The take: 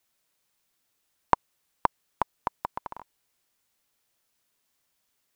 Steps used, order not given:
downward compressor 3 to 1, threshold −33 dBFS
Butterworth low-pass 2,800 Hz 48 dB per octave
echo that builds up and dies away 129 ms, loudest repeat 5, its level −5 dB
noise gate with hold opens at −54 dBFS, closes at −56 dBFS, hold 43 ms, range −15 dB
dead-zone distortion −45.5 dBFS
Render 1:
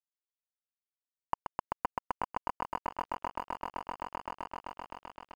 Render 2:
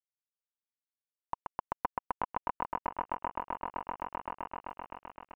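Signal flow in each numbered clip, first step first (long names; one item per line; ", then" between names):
echo that builds up and dies away, then noise gate with hold, then downward compressor, then Butterworth low-pass, then dead-zone distortion
echo that builds up and dies away, then dead-zone distortion, then Butterworth low-pass, then downward compressor, then noise gate with hold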